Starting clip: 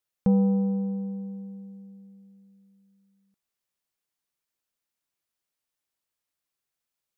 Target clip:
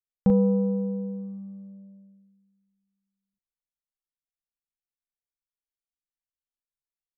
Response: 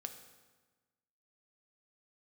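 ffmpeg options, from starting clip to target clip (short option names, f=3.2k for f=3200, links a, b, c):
-filter_complex "[0:a]anlmdn=0.251,asplit=2[a][b];[b]adelay=39,volume=-3dB[c];[a][c]amix=inputs=2:normalize=0,volume=2dB"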